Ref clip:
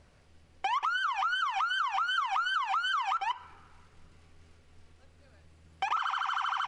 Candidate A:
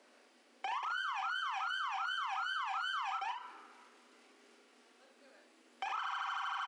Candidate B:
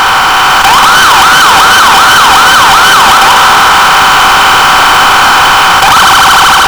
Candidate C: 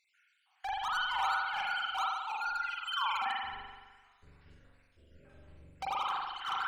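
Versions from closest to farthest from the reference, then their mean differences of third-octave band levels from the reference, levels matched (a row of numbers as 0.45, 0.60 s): A, C, B; 5.0, 7.0, 19.5 dB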